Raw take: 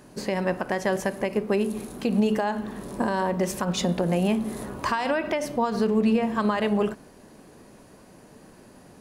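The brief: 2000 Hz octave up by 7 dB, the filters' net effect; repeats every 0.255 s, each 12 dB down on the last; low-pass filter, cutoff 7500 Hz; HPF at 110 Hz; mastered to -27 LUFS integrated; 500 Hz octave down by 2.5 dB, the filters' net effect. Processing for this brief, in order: HPF 110 Hz; LPF 7500 Hz; bell 500 Hz -3.5 dB; bell 2000 Hz +9 dB; feedback echo 0.255 s, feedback 25%, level -12 dB; gain -1.5 dB

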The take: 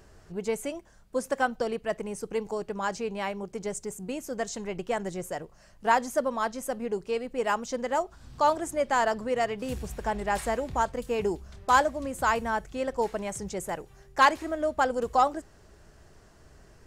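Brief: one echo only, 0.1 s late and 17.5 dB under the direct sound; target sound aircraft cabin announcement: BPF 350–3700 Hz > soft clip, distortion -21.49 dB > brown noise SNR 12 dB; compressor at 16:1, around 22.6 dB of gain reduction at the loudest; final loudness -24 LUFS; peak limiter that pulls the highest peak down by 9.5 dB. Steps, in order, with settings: compressor 16:1, threshold -38 dBFS; limiter -36 dBFS; BPF 350–3700 Hz; echo 0.1 s -17.5 dB; soft clip -37.5 dBFS; brown noise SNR 12 dB; gain +25.5 dB

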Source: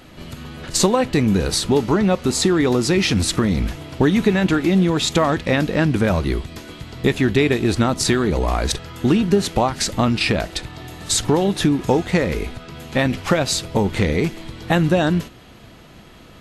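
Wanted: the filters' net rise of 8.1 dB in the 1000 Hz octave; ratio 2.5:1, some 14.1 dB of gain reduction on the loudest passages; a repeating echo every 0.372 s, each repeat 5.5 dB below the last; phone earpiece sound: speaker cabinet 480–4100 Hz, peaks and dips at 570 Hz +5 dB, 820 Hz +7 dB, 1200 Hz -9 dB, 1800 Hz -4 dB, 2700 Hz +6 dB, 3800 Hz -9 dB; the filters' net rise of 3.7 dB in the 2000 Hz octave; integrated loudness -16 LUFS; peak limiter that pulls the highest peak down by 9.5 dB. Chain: bell 1000 Hz +7 dB; bell 2000 Hz +4 dB; compressor 2.5:1, threshold -32 dBFS; limiter -23 dBFS; speaker cabinet 480–4100 Hz, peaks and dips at 570 Hz +5 dB, 820 Hz +7 dB, 1200 Hz -9 dB, 1800 Hz -4 dB, 2700 Hz +6 dB, 3800 Hz -9 dB; feedback echo 0.372 s, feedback 53%, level -5.5 dB; gain +19 dB

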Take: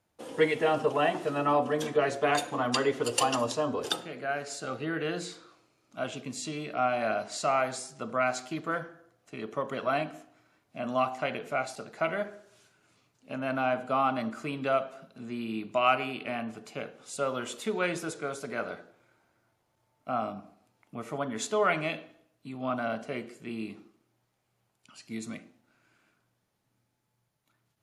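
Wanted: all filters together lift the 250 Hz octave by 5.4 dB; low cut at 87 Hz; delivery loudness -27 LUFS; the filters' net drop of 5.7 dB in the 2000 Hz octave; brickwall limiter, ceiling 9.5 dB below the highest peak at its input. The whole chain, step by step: HPF 87 Hz; bell 250 Hz +6.5 dB; bell 2000 Hz -8.5 dB; gain +5 dB; limiter -14.5 dBFS

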